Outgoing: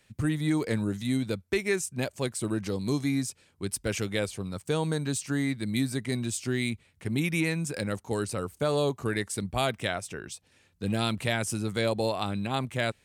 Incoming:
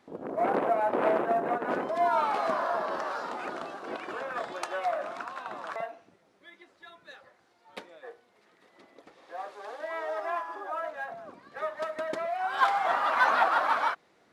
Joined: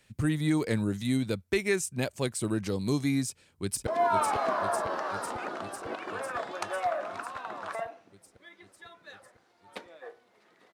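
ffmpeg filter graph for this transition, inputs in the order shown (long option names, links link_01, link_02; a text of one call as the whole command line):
ffmpeg -i cue0.wav -i cue1.wav -filter_complex "[0:a]apad=whole_dur=10.73,atrim=end=10.73,atrim=end=3.872[link_01];[1:a]atrim=start=1.878:end=8.74[link_02];[link_01][link_02]acrossfade=duration=0.004:curve1=hsin:curve2=hsin,asplit=2[link_03][link_04];[link_04]afade=type=in:start_time=3.25:duration=0.01,afade=type=out:start_time=3.87:duration=0.01,aecho=0:1:500|1000|1500|2000|2500|3000|3500|4000|4500|5000|5500|6000:0.501187|0.37589|0.281918|0.211438|0.158579|0.118934|0.0892006|0.0669004|0.0501753|0.0376315|0.0282236|0.0211677[link_05];[link_03][link_05]amix=inputs=2:normalize=0" out.wav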